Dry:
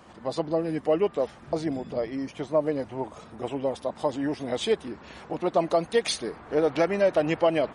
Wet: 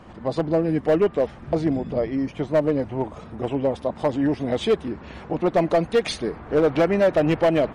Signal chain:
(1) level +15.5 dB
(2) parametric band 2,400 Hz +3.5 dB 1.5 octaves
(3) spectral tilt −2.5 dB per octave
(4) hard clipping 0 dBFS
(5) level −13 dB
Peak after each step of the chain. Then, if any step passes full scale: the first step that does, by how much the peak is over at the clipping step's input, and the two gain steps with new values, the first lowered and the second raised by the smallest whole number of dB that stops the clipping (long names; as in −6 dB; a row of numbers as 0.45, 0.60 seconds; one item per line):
+5.0, +5.5, +7.5, 0.0, −13.0 dBFS
step 1, 7.5 dB
step 1 +7.5 dB, step 5 −5 dB